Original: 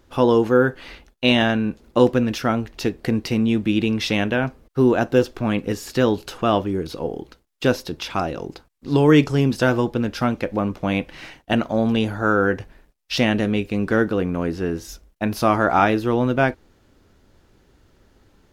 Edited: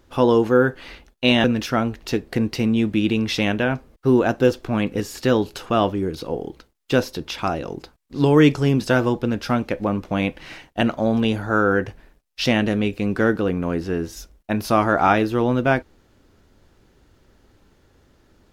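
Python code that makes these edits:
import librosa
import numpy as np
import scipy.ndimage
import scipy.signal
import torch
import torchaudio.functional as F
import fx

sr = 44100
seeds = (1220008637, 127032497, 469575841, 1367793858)

y = fx.edit(x, sr, fx.cut(start_s=1.44, length_s=0.72), tone=tone)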